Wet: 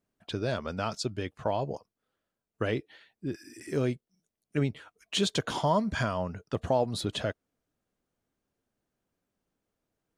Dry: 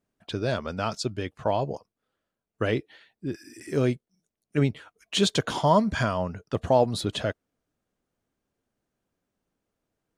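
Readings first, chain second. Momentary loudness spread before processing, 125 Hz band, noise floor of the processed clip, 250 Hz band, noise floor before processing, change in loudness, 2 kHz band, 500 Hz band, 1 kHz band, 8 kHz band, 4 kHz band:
14 LU, -4.5 dB, under -85 dBFS, -4.5 dB, under -85 dBFS, -4.5 dB, -3.5 dB, -5.0 dB, -5.0 dB, -3.5 dB, -3.5 dB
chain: compressor 1.5:1, threshold -26 dBFS, peak gain reduction 4.5 dB; gain -2 dB

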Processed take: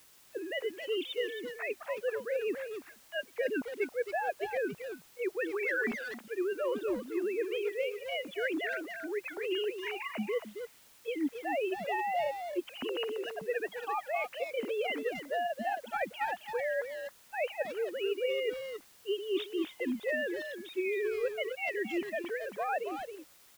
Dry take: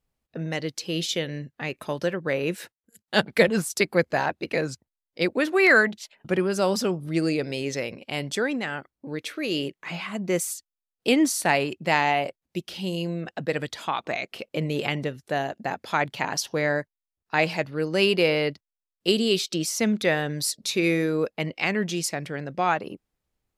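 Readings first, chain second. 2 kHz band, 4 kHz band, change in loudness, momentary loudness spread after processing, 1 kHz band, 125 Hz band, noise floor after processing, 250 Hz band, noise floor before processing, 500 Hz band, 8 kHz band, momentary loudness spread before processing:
-10.0 dB, -12.5 dB, -9.5 dB, 7 LU, -8.0 dB, under -25 dB, -60 dBFS, -12.0 dB, under -85 dBFS, -6.5 dB, -22.5 dB, 11 LU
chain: sine-wave speech; reverse; compressor 12:1, threshold -30 dBFS, peak gain reduction 20.5 dB; reverse; requantised 10-bit, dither triangular; speakerphone echo 0.27 s, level -6 dB

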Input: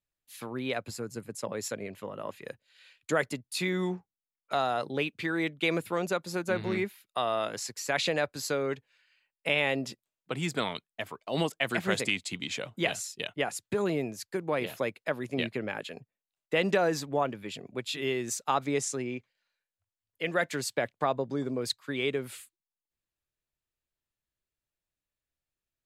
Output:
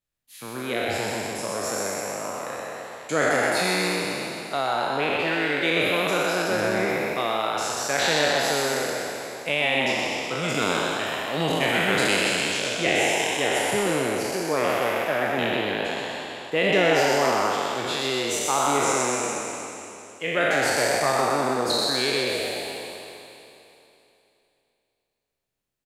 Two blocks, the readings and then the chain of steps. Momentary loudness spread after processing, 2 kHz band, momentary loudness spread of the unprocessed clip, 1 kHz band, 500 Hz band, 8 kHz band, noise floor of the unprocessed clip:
11 LU, +9.5 dB, 11 LU, +10.0 dB, +7.5 dB, +10.5 dB, under -85 dBFS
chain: spectral trails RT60 2.92 s; frequency-shifting echo 0.126 s, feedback 53%, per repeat +110 Hz, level -4 dB

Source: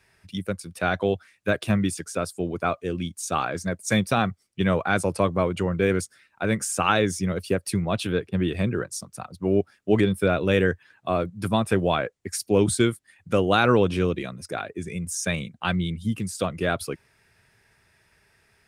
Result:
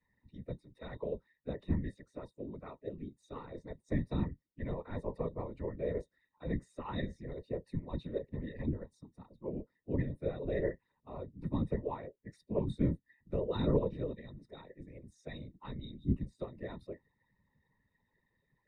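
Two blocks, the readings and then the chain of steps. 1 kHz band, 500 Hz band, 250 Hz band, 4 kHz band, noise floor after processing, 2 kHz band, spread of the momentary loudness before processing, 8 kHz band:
-21.0 dB, -14.0 dB, -13.5 dB, -22.5 dB, -82 dBFS, -24.5 dB, 11 LU, under -40 dB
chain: bin magnitudes rounded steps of 15 dB; octave resonator A#, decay 0.1 s; whisperiser; gain -4.5 dB

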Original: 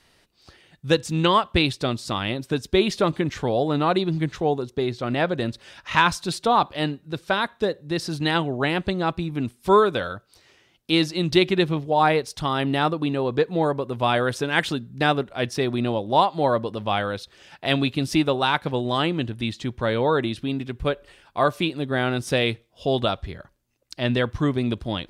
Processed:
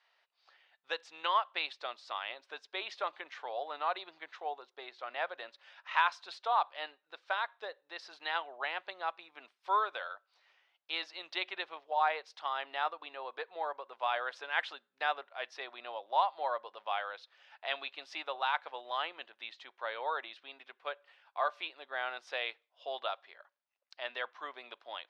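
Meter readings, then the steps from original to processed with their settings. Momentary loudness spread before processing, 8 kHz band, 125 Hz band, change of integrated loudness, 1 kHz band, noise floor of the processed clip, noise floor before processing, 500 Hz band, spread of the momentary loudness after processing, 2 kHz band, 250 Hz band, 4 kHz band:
9 LU, under -20 dB, under -40 dB, -13.5 dB, -9.5 dB, -81 dBFS, -61 dBFS, -18.5 dB, 14 LU, -10.0 dB, -36.0 dB, -13.0 dB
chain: HPF 690 Hz 24 dB/oct; air absorption 220 m; gain -8 dB

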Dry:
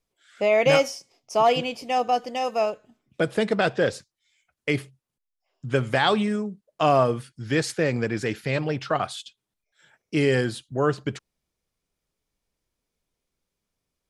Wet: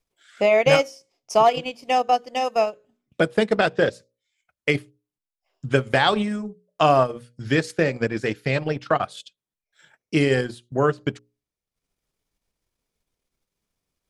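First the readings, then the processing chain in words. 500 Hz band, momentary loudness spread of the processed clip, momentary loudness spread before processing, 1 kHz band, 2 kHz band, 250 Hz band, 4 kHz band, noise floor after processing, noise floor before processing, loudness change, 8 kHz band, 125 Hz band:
+2.0 dB, 11 LU, 12 LU, +3.0 dB, +2.5 dB, +1.5 dB, +1.5 dB, under -85 dBFS, -83 dBFS, +2.0 dB, -1.5 dB, +1.0 dB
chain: notches 60/120/180/240/300/360/420/480/540/600 Hz; transient shaper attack +4 dB, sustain -10 dB; gain +1.5 dB

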